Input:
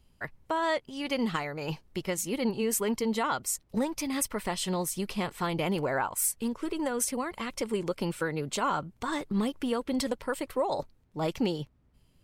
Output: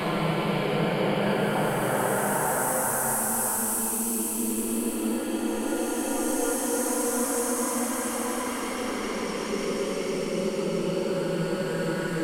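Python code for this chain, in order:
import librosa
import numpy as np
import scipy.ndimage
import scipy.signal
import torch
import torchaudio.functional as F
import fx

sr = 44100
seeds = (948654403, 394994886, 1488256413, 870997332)

y = fx.vibrato(x, sr, rate_hz=2.3, depth_cents=79.0)
y = fx.paulstretch(y, sr, seeds[0], factor=4.6, window_s=1.0, from_s=5.49)
y = y * 10.0 ** (4.0 / 20.0)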